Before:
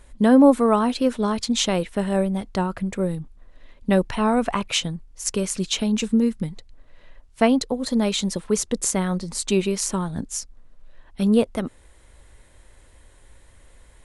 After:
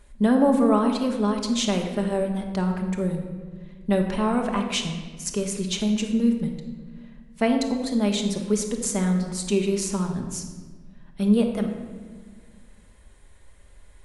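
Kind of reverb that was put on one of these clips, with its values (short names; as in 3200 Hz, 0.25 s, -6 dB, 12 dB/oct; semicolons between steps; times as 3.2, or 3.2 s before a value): shoebox room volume 1400 m³, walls mixed, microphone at 1.3 m; gain -5 dB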